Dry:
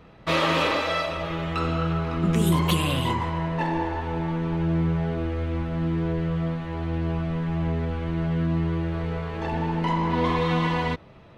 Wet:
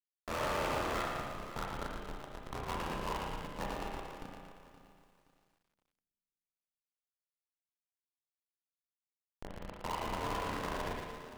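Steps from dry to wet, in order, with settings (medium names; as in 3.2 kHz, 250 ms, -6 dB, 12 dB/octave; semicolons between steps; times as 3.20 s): three-band isolator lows -20 dB, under 520 Hz, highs -13 dB, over 3.7 kHz; de-hum 222.1 Hz, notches 9; ring modulator 42 Hz; Schmitt trigger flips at -26.5 dBFS; two-band feedback delay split 340 Hz, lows 210 ms, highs 115 ms, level -13 dB; overdrive pedal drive 18 dB, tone 7 kHz, clips at -27 dBFS; spring tank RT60 1 s, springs 31/36 ms, chirp 65 ms, DRR 0.5 dB; bit-crushed delay 522 ms, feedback 35%, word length 10-bit, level -14 dB; trim -3 dB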